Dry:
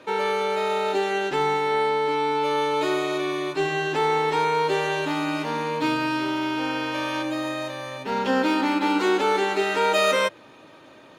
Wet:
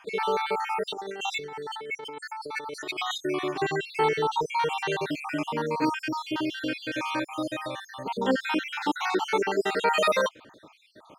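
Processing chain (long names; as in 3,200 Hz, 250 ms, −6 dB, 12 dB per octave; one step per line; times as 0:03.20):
time-frequency cells dropped at random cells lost 60%
0:00.87–0:03.18: compressor whose output falls as the input rises −35 dBFS, ratio −1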